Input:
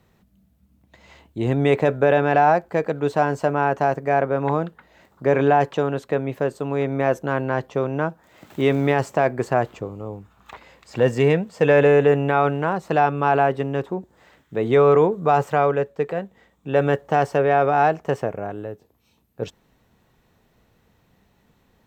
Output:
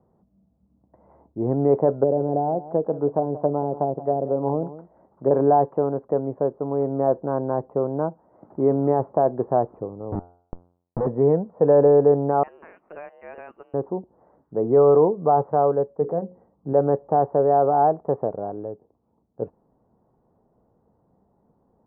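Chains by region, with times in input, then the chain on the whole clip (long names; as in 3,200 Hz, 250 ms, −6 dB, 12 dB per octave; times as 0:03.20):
0:01.91–0:05.31: treble cut that deepens with the level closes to 460 Hz, closed at −15 dBFS + single-tap delay 181 ms −15.5 dB
0:10.12–0:11.07: spectral tilt −3.5 dB per octave + comparator with hysteresis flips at −24 dBFS + hum removal 87.96 Hz, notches 18
0:12.43–0:13.74: high-pass filter 220 Hz + voice inversion scrambler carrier 3,200 Hz
0:16.01–0:16.73: low-shelf EQ 220 Hz +8 dB + mains-hum notches 60/120/180/240/300/360/420/480/540 Hz
whole clip: inverse Chebyshev low-pass filter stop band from 3,100 Hz, stop band 60 dB; low-shelf EQ 120 Hz −11.5 dB; level +1 dB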